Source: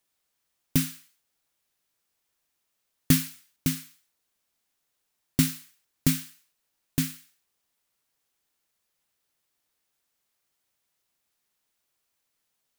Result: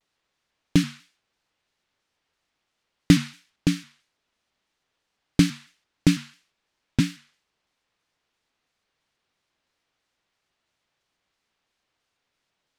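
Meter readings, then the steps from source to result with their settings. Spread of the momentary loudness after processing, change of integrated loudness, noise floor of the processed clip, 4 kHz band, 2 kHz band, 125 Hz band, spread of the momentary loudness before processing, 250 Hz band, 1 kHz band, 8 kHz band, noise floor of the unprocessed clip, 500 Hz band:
13 LU, +3.5 dB, -80 dBFS, +3.5 dB, +5.0 dB, +4.5 dB, 14 LU, +6.5 dB, +5.0 dB, -4.5 dB, -79 dBFS, +8.5 dB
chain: low-pass 4.3 kHz 12 dB/octave; vibrato with a chosen wave square 3 Hz, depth 160 cents; trim +6 dB

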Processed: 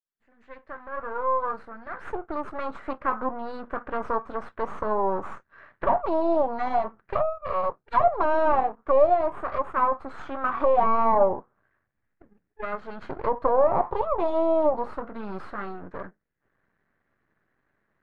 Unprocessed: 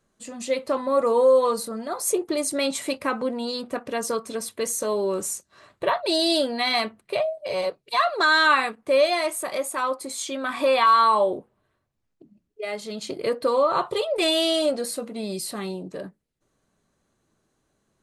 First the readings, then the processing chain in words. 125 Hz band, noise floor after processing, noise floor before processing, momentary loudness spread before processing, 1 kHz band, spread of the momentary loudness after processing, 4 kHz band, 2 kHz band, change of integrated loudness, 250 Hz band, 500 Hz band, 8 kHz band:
no reading, -77 dBFS, -75 dBFS, 14 LU, 0.0 dB, 16 LU, under -25 dB, -11.0 dB, -2.5 dB, -4.0 dB, -2.0 dB, under -35 dB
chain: fade-in on the opening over 4.07 s; half-wave rectifier; touch-sensitive low-pass 770–1800 Hz down, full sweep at -20 dBFS

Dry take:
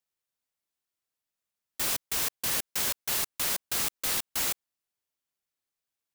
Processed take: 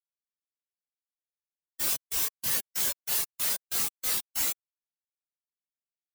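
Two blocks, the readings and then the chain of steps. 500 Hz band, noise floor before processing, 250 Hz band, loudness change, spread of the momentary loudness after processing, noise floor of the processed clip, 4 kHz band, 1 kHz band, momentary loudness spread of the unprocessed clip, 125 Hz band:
-4.5 dB, under -85 dBFS, -4.5 dB, +0.5 dB, 2 LU, under -85 dBFS, -2.0 dB, -4.5 dB, 3 LU, -4.0 dB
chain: treble shelf 4.9 kHz +2.5 dB; spectral contrast expander 2.5:1

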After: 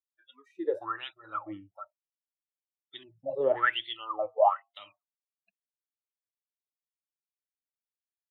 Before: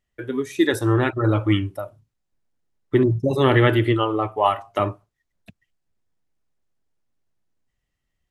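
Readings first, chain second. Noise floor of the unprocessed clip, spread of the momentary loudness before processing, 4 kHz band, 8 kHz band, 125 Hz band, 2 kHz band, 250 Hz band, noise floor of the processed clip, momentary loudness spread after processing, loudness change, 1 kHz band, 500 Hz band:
-78 dBFS, 11 LU, -7.5 dB, no reading, -36.5 dB, -7.5 dB, -24.0 dB, under -85 dBFS, 23 LU, -9.5 dB, -6.5 dB, -9.0 dB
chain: spectral noise reduction 30 dB; wah-wah 1.1 Hz 480–3600 Hz, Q 17; trim +6 dB

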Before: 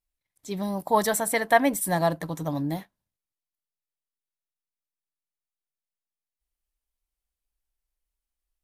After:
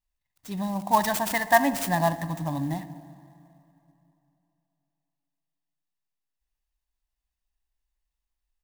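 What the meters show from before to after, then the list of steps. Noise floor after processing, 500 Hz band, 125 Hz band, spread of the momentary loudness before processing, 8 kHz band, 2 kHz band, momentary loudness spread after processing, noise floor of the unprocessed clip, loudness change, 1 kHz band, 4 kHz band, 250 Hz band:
-85 dBFS, -2.5 dB, +1.5 dB, 11 LU, -3.5 dB, +1.0 dB, 13 LU, under -85 dBFS, 0.0 dB, +1.5 dB, +1.0 dB, 0.0 dB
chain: comb 1.1 ms, depth 79%; filtered feedback delay 65 ms, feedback 80%, low-pass 1.1 kHz, level -14 dB; plate-style reverb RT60 3.1 s, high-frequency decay 0.75×, DRR 16 dB; sampling jitter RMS 0.027 ms; trim -2.5 dB

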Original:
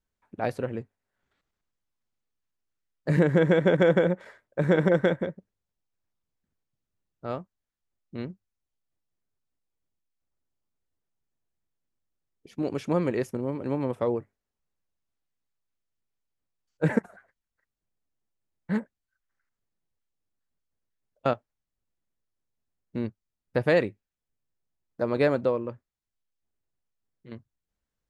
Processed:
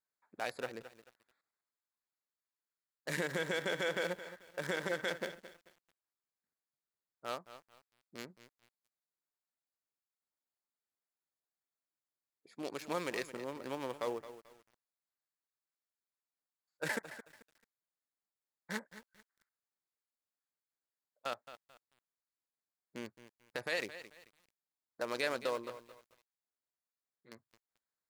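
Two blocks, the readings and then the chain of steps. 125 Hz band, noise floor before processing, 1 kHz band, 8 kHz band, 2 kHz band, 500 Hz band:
-22.0 dB, under -85 dBFS, -8.0 dB, no reading, -5.0 dB, -14.0 dB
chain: local Wiener filter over 15 samples; differentiator; peak limiter -36 dBFS, peak gain reduction 11.5 dB; bit-crushed delay 219 ms, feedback 35%, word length 11-bit, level -13 dB; trim +13 dB

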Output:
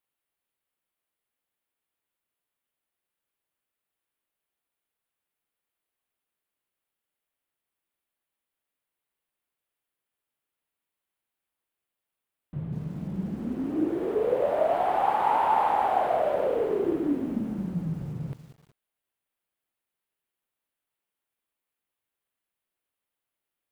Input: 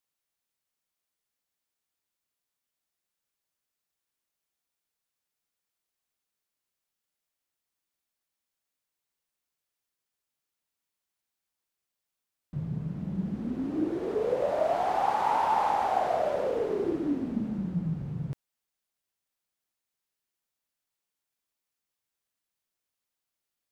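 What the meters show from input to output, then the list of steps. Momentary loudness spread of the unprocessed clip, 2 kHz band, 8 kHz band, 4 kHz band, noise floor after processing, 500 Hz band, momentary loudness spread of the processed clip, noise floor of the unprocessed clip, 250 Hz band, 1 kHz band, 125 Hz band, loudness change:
10 LU, +2.0 dB, no reading, -0.5 dB, under -85 dBFS, +3.0 dB, 12 LU, under -85 dBFS, +1.5 dB, +2.5 dB, 0.0 dB, +2.5 dB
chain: FFT filter 200 Hz 0 dB, 340 Hz +3 dB, 3.1 kHz +1 dB, 5.8 kHz -13 dB, 9.7 kHz -1 dB; bit-crushed delay 193 ms, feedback 35%, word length 8-bit, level -13.5 dB

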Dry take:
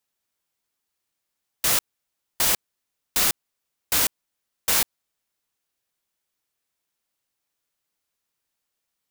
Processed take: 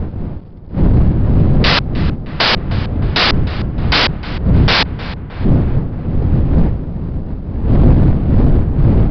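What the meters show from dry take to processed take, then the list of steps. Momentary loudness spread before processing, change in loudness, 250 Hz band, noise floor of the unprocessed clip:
6 LU, +7.5 dB, +30.0 dB, -81 dBFS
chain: square wave that keeps the level; wind noise 140 Hz -26 dBFS; in parallel at 0 dB: compressor with a negative ratio -24 dBFS, ratio -0.5; on the sum: waveshaping leveller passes 2; on a send: filtered feedback delay 310 ms, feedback 66%, low-pass 2.1 kHz, level -13.5 dB; on the sum: resampled via 11.025 kHz; trim +2.5 dB

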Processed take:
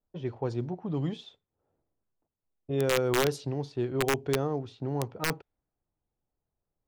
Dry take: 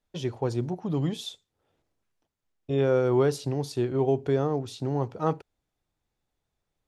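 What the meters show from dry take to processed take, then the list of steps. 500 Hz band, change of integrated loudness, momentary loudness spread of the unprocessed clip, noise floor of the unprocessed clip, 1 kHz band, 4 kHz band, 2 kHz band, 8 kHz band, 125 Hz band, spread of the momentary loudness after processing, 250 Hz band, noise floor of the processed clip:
-4.0 dB, -3.0 dB, 8 LU, -83 dBFS, -2.0 dB, +2.0 dB, +7.5 dB, +5.5 dB, -4.0 dB, 8 LU, -4.0 dB, under -85 dBFS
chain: level-controlled noise filter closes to 1 kHz, open at -19 dBFS; integer overflow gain 14 dB; trim -3.5 dB

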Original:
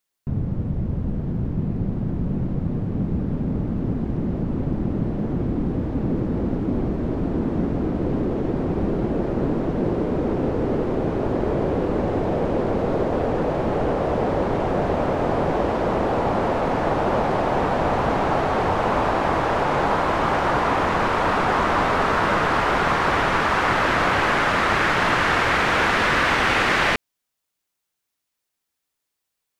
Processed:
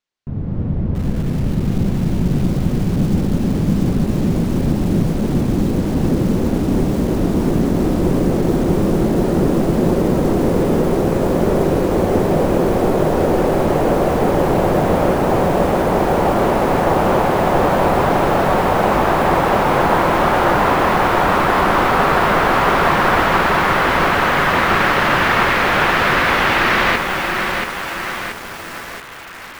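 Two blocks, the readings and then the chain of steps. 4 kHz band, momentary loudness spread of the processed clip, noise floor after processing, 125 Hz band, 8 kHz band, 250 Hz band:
+5.0 dB, 6 LU, -30 dBFS, +6.5 dB, no reading, +7.0 dB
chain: treble shelf 3.4 kHz +5.5 dB; level rider gain up to 7 dB; distance through air 140 m; hum notches 60/120 Hz; echo whose repeats swap between lows and highs 675 ms, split 830 Hz, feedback 68%, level -9.5 dB; bit-crushed delay 681 ms, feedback 55%, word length 5-bit, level -4.5 dB; trim -1 dB

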